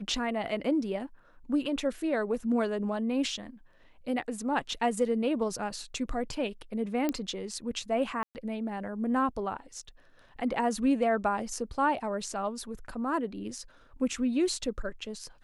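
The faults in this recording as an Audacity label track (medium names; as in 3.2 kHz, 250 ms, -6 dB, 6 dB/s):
7.090000	7.090000	pop -16 dBFS
8.230000	8.350000	dropout 119 ms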